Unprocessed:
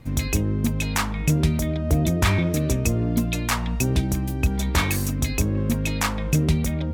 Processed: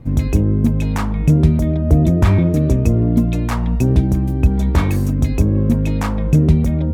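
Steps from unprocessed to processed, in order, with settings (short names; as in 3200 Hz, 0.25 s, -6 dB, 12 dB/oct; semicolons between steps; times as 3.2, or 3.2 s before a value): tilt shelf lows +8.5 dB, about 1200 Hz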